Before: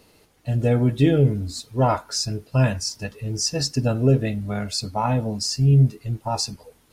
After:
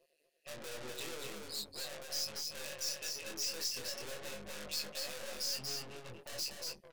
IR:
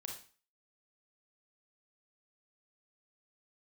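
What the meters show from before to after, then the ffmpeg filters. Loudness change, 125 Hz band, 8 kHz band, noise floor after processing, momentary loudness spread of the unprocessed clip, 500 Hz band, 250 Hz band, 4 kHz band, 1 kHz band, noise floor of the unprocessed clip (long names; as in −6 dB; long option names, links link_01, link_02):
−17.5 dB, −39.0 dB, −10.0 dB, −75 dBFS, 11 LU, −21.0 dB, −31.0 dB, −9.0 dB, −24.5 dB, −58 dBFS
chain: -filter_complex "[0:a]asplit=3[link_01][link_02][link_03];[link_01]bandpass=frequency=530:width_type=q:width=8,volume=0dB[link_04];[link_02]bandpass=frequency=1840:width_type=q:width=8,volume=-6dB[link_05];[link_03]bandpass=frequency=2480:width_type=q:width=8,volume=-9dB[link_06];[link_04][link_05][link_06]amix=inputs=3:normalize=0,aemphasis=mode=production:type=75kf,afftdn=noise_reduction=23:noise_floor=-48,highshelf=frequency=2800:gain=-3.5,aecho=1:1:5.4:0.37,acompressor=threshold=-37dB:ratio=5,tremolo=f=150:d=0.919,aeval=exprs='(tanh(1000*val(0)+0.7)-tanh(0.7))/1000':channel_layout=same,flanger=delay=20:depth=4.4:speed=0.42,crystalizer=i=7.5:c=0,acrossover=split=7800[link_07][link_08];[link_08]acompressor=threshold=-57dB:ratio=4:attack=1:release=60[link_09];[link_07][link_09]amix=inputs=2:normalize=0,aecho=1:1:237:0.668,volume=14dB"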